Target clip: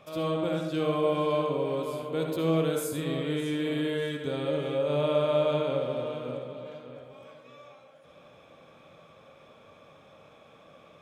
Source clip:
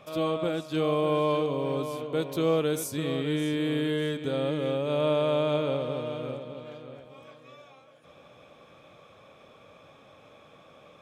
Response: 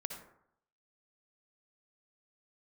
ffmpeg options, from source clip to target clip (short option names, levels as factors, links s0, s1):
-filter_complex "[0:a]asettb=1/sr,asplit=3[s0][s1][s2];[s0]atrim=end=1.194[s3];[s1]atrim=start=1.19:end=3.45,asetpts=PTS-STARTPTS,afade=t=in:d=0.004:c=qsin,afade=t=out:st=2.256:d=0.004:c=qsin,bandreject=f=5800:w=7.6[s4];[s2]atrim=start=3.446[s5];[s3][s4]acrossfade=d=0.004:c1=hsin:c2=qsin[s6];[s6][s5]acrossfade=d=0.004:c1=qsin:c2=hsin[s7];[1:a]atrim=start_sample=2205[s8];[s7][s8]afir=irnorm=-1:irlink=0"